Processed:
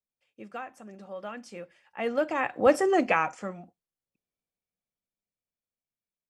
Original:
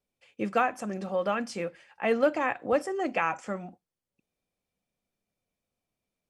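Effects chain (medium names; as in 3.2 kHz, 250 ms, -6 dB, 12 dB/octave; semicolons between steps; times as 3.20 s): Doppler pass-by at 2.86 s, 8 m/s, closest 1.6 m; trim +8 dB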